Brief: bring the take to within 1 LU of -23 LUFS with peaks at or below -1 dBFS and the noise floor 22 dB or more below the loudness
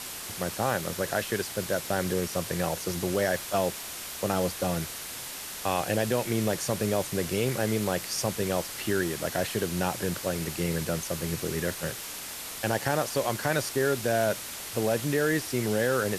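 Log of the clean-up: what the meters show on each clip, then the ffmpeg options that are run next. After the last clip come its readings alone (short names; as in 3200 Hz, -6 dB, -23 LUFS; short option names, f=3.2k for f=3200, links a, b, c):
noise floor -39 dBFS; noise floor target -51 dBFS; loudness -29.0 LUFS; peak -11.5 dBFS; loudness target -23.0 LUFS
-> -af "afftdn=nr=12:nf=-39"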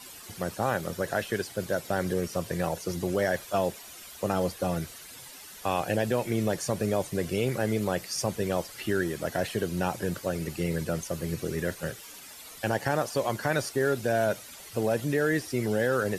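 noise floor -46 dBFS; noise floor target -52 dBFS
-> -af "afftdn=nr=6:nf=-46"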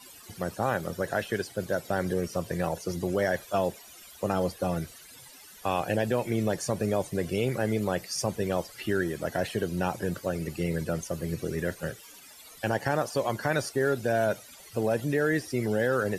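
noise floor -50 dBFS; noise floor target -52 dBFS
-> -af "afftdn=nr=6:nf=-50"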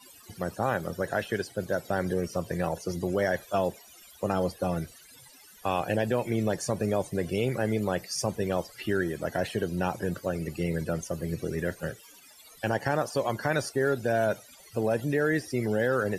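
noise floor -53 dBFS; loudness -30.0 LUFS; peak -12.5 dBFS; loudness target -23.0 LUFS
-> -af "volume=7dB"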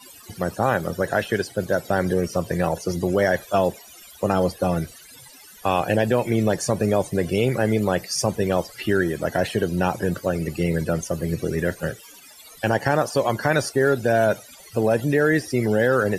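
loudness -23.0 LUFS; peak -5.5 dBFS; noise floor -46 dBFS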